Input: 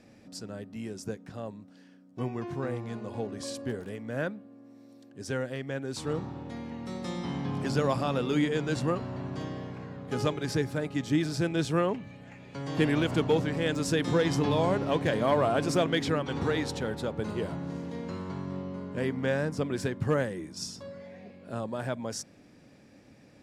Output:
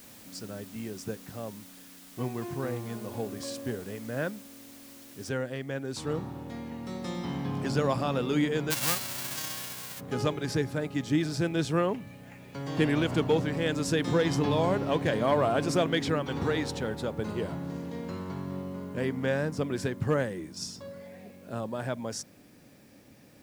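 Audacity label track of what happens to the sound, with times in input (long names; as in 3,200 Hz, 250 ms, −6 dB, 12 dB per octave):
5.290000	5.290000	noise floor change −52 dB −66 dB
8.700000	9.990000	spectral envelope flattened exponent 0.1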